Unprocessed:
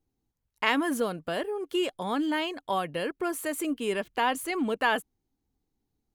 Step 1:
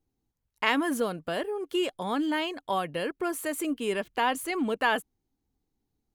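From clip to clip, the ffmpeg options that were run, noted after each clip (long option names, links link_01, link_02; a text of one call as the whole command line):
ffmpeg -i in.wav -af anull out.wav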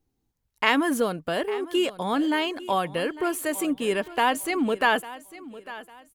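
ffmpeg -i in.wav -af "aecho=1:1:851|1702|2553:0.141|0.0452|0.0145,volume=4dB" out.wav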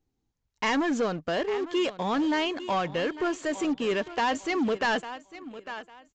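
ffmpeg -i in.wav -filter_complex "[0:a]asoftclip=type=tanh:threshold=-21.5dB,asplit=2[link_01][link_02];[link_02]acrusher=bits=5:mix=0:aa=0.5,volume=-6.5dB[link_03];[link_01][link_03]amix=inputs=2:normalize=0,aresample=16000,aresample=44100,volume=-2.5dB" out.wav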